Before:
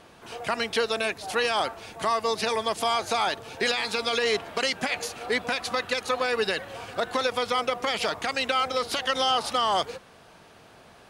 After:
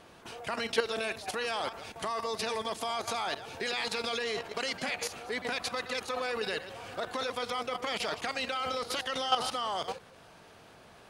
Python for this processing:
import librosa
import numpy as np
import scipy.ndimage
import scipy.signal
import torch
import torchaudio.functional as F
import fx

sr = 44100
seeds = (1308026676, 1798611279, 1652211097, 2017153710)

y = fx.reverse_delay(x, sr, ms=108, wet_db=-11.0)
y = fx.level_steps(y, sr, step_db=11)